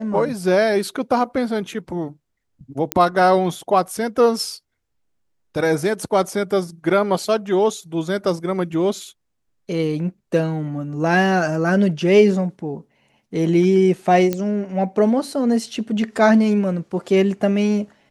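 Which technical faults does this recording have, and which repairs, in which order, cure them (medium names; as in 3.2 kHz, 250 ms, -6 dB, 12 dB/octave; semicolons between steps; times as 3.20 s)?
2.92 s: pop -2 dBFS
14.33 s: pop -9 dBFS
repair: de-click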